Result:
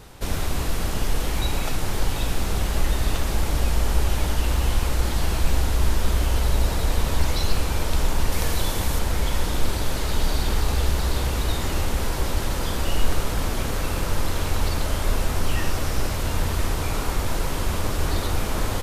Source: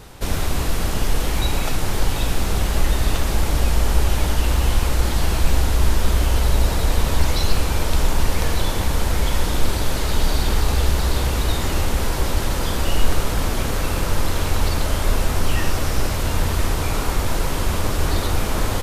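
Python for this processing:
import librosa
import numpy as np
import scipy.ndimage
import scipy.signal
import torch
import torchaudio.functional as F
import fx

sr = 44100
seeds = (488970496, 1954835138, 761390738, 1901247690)

y = fx.high_shelf(x, sr, hz=5900.0, db=6.0, at=(8.32, 8.99))
y = F.gain(torch.from_numpy(y), -3.5).numpy()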